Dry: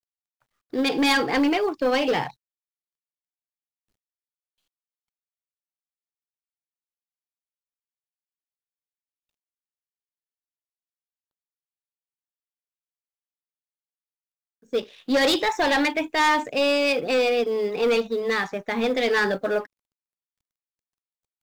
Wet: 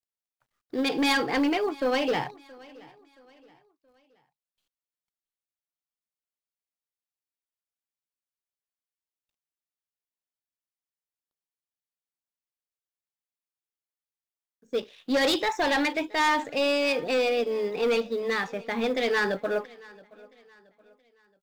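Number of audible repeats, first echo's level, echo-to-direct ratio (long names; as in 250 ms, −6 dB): 2, −23.0 dB, −22.5 dB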